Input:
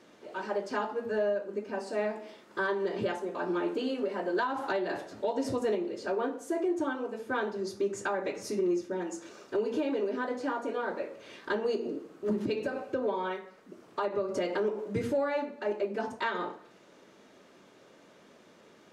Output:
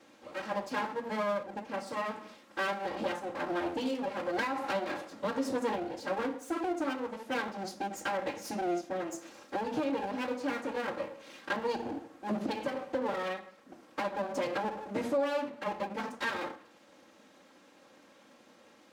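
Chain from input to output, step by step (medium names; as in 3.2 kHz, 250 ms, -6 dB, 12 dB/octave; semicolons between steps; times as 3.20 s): comb filter that takes the minimum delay 3.7 ms; high-pass 150 Hz 12 dB/octave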